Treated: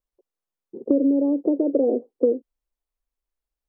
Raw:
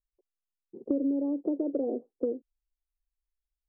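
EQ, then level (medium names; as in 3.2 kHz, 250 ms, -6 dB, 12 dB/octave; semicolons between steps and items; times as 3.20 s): graphic EQ 125/250/500/1000 Hz +4/+6/+9/+6 dB; 0.0 dB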